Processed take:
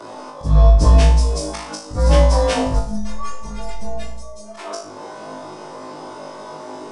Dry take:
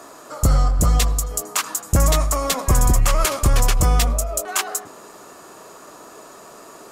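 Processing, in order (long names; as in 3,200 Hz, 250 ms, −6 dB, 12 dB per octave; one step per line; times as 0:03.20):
partials spread apart or drawn together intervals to 91%
0:02.79–0:04.57: stiff-string resonator 210 Hz, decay 0.5 s, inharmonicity 0.008
volume swells 232 ms
on a send: flutter between parallel walls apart 3.3 metres, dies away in 0.46 s
on the sum: rectangular room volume 210 cubic metres, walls furnished, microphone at 0.52 metres
in parallel at 0 dB: downward compressor, threshold −26 dBFS, peak gain reduction 15.5 dB
on the sum: high-shelf EQ 2,800 Hz −12 dB
level +2 dB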